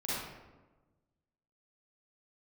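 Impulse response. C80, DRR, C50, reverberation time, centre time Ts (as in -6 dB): 0.0 dB, -10.0 dB, -5.0 dB, 1.2 s, 100 ms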